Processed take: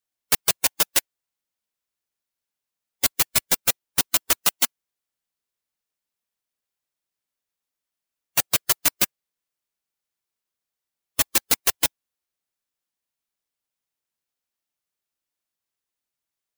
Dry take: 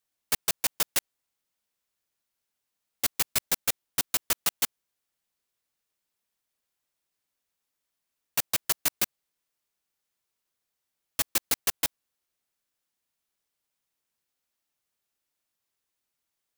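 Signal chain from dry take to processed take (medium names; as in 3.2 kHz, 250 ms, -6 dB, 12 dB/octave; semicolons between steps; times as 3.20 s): spectral noise reduction 11 dB; trim +7 dB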